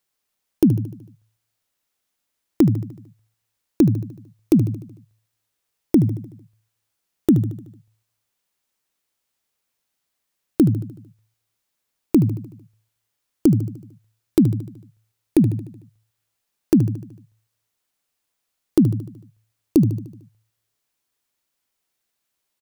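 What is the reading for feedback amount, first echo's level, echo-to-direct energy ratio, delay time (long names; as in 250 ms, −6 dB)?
54%, −12.5 dB, −11.0 dB, 75 ms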